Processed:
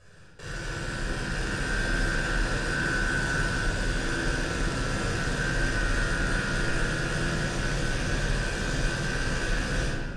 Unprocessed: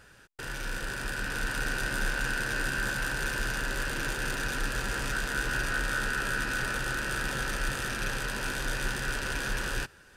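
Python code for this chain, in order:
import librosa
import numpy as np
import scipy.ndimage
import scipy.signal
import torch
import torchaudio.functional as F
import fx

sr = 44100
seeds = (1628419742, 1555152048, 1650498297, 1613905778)

y = scipy.signal.sosfilt(scipy.signal.butter(4, 8800.0, 'lowpass', fs=sr, output='sos'), x)
y = fx.peak_eq(y, sr, hz=1900.0, db=-6.0, octaves=2.3)
y = fx.room_early_taps(y, sr, ms=(12, 51), db=(-6.0, -5.5))
y = fx.room_shoebox(y, sr, seeds[0], volume_m3=2800.0, walls='mixed', distance_m=5.7)
y = fx.doppler_dist(y, sr, depth_ms=0.16)
y = y * 10.0 ** (-4.0 / 20.0)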